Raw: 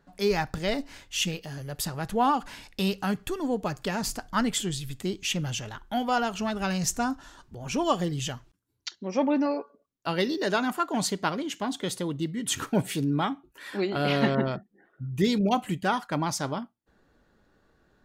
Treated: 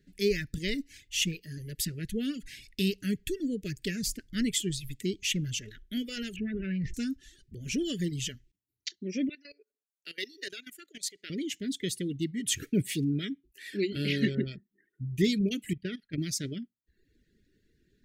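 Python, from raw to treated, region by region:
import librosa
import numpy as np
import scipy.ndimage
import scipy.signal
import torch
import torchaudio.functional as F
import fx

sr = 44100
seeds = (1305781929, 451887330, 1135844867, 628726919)

y = fx.chain(x, sr, fx.lowpass(hz=2100.0, slope=24),
    fx.transient(attack_db=-1, sustain_db=8), at=(6.36, 6.94))
y = fx.chain(y, sr, fx.highpass(hz=660.0, slope=12),
    fx.level_steps(step_db=16), at=(9.29, 11.3))
y = fx.chain(y, sr, fx.low_shelf(hz=97.0, db=7.0),
    fx.level_steps(step_db=13),
    fx.moving_average(points=6), at=(15.73, 16.18))
y = fx.dereverb_blind(y, sr, rt60_s=0.73)
y = scipy.signal.sosfilt(scipy.signal.ellip(3, 1.0, 70, [440.0, 1900.0], 'bandstop', fs=sr, output='sos'), y)
y = fx.peak_eq(y, sr, hz=490.0, db=-7.0, octaves=0.27)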